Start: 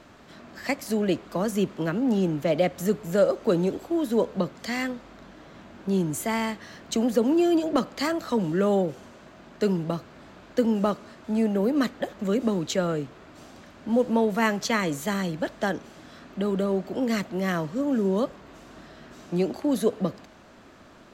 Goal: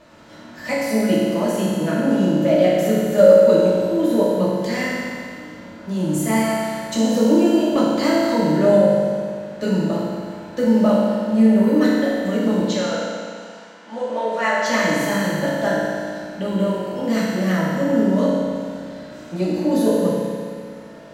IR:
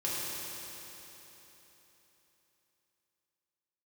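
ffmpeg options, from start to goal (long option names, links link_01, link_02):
-filter_complex "[0:a]asettb=1/sr,asplit=3[link_01][link_02][link_03];[link_01]atrim=end=12.614[link_04];[link_02]atrim=start=12.61:end=14.66,asetpts=PTS-STARTPTS,afade=type=in:duration=0.004:curve=qsin,afade=type=out:start_time=2.046:duration=0.004:curve=qsin,highpass=590,lowpass=6400[link_05];[link_03]atrim=start=14.656[link_06];[link_04][link_05]acrossfade=duration=0.004:curve1=hsin:curve2=qsin[link_07];[link_07][link_06]acrossfade=duration=0.004:curve1=qsin:curve2=hsin[link_08];[1:a]atrim=start_sample=2205,asetrate=74970,aresample=44100[link_09];[link_08][link_09]afir=irnorm=-1:irlink=0,volume=4dB"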